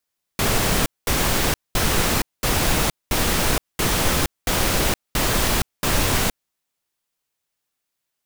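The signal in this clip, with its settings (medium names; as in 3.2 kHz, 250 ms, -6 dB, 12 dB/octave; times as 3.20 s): noise bursts pink, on 0.47 s, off 0.21 s, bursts 9, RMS -19.5 dBFS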